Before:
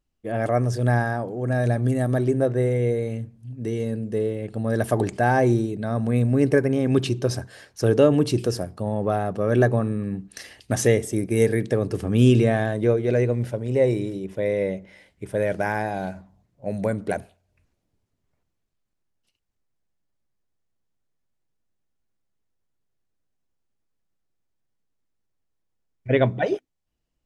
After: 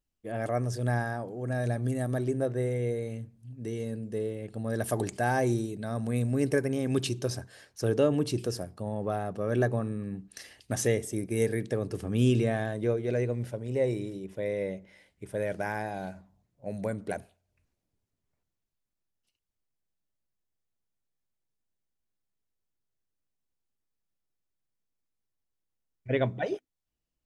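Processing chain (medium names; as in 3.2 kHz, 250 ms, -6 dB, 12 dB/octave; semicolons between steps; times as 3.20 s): treble shelf 4.3 kHz +6 dB, from 4.86 s +12 dB, from 7.30 s +4 dB; trim -8 dB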